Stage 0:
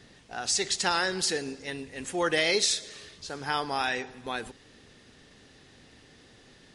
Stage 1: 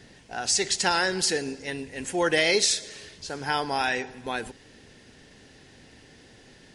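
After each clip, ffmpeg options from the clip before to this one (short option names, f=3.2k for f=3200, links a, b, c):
-af "equalizer=f=3.7k:t=o:w=0.3:g=-4,bandreject=f=1.2k:w=6.7,volume=3.5dB"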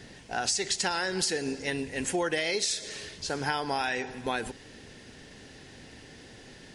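-af "acompressor=threshold=-28dB:ratio=12,volume=3dB"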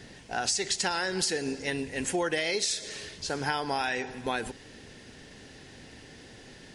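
-af anull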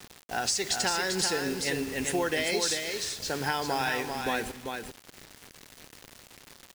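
-filter_complex "[0:a]acrusher=bits=6:mix=0:aa=0.000001,asplit=2[a][b];[b]aecho=0:1:393:0.531[c];[a][c]amix=inputs=2:normalize=0"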